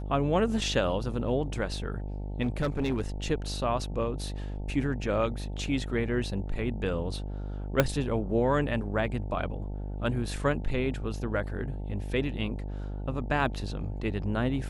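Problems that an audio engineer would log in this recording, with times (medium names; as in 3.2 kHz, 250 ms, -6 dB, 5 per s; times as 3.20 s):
buzz 50 Hz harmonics 18 -35 dBFS
2.42–3.02 s: clipped -23 dBFS
7.80 s: pop -7 dBFS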